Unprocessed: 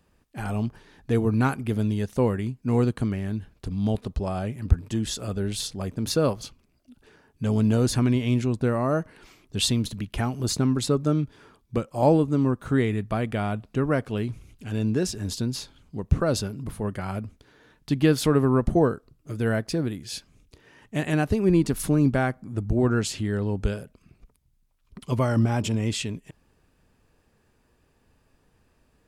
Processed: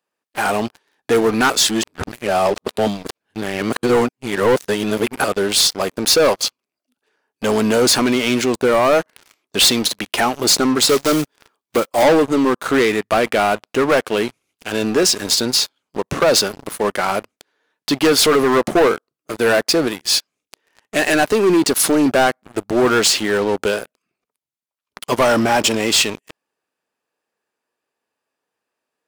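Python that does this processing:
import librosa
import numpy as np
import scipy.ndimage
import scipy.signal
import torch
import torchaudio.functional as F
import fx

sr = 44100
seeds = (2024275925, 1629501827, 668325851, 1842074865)

y = fx.block_float(x, sr, bits=5, at=(10.87, 12.02), fade=0.02)
y = fx.edit(y, sr, fx.reverse_span(start_s=1.5, length_s=3.74), tone=tone)
y = scipy.signal.sosfilt(scipy.signal.butter(2, 470.0, 'highpass', fs=sr, output='sos'), y)
y = fx.dynamic_eq(y, sr, hz=4700.0, q=1.9, threshold_db=-46.0, ratio=4.0, max_db=4)
y = fx.leveller(y, sr, passes=5)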